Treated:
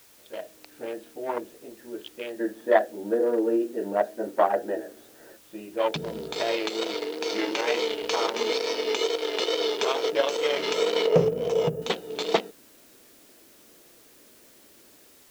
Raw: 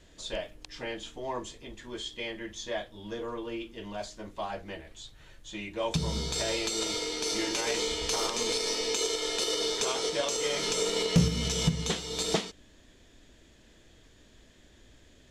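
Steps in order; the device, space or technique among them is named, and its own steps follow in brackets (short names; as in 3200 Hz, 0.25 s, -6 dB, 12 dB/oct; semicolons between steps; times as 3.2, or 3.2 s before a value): Wiener smoothing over 41 samples; 2.4–5.37 spectral gain 210–2000 Hz +10 dB; dictaphone (BPF 390–3100 Hz; AGC gain up to 9.5 dB; wow and flutter; white noise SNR 27 dB); 11.07–11.82 graphic EQ 125/250/500/2000/4000/8000 Hz +5/-7/+11/-6/-11/-3 dB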